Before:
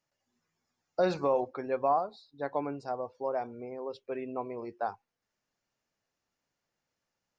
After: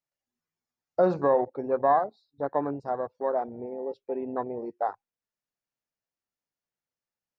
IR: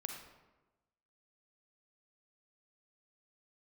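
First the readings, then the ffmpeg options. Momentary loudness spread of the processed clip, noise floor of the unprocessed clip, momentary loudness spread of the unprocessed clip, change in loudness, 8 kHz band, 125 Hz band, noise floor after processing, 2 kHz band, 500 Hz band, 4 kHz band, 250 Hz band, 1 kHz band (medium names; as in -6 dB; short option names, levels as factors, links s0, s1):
12 LU, under -85 dBFS, 12 LU, +5.0 dB, no reading, +4.5 dB, under -85 dBFS, +2.0 dB, +5.0 dB, under -10 dB, +5.0 dB, +5.0 dB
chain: -af "afwtdn=0.0141,volume=1.78"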